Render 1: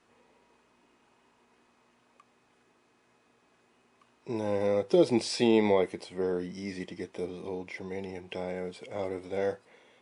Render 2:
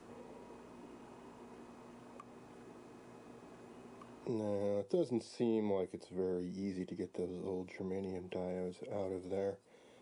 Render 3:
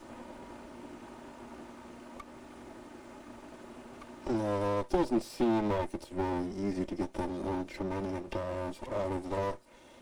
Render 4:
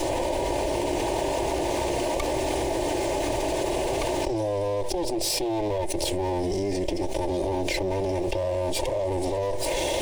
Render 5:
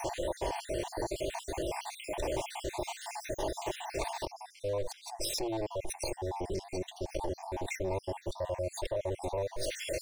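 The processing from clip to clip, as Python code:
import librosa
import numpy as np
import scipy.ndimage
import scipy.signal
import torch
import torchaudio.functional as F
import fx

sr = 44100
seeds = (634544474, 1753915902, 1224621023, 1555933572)

y1 = fx.peak_eq(x, sr, hz=2000.0, db=-11.5, octaves=2.6)
y1 = fx.band_squash(y1, sr, depth_pct=70)
y1 = y1 * librosa.db_to_amplitude(-5.0)
y2 = fx.lower_of_two(y1, sr, delay_ms=3.3)
y2 = y2 * librosa.db_to_amplitude(8.0)
y3 = fx.fixed_phaser(y2, sr, hz=550.0, stages=4)
y3 = fx.env_flatten(y3, sr, amount_pct=100)
y4 = fx.spec_dropout(y3, sr, seeds[0], share_pct=57)
y4 = fx.peak_eq(y4, sr, hz=260.0, db=-8.0, octaves=0.58)
y4 = y4 * librosa.db_to_amplitude(-5.0)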